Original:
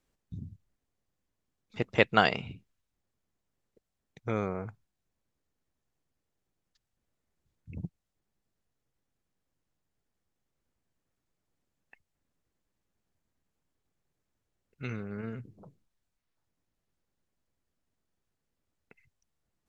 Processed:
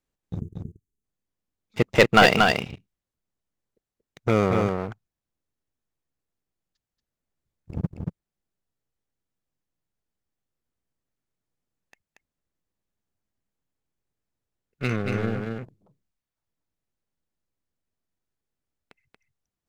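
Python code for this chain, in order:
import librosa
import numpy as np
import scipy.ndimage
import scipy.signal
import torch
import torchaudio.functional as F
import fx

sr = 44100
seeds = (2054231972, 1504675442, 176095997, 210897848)

y = fx.leveller(x, sr, passes=3)
y = fx.spec_box(y, sr, start_s=0.4, length_s=0.64, low_hz=460.0, high_hz=6000.0, gain_db=-26)
y = y + 10.0 ** (-4.0 / 20.0) * np.pad(y, (int(232 * sr / 1000.0), 0))[:len(y)]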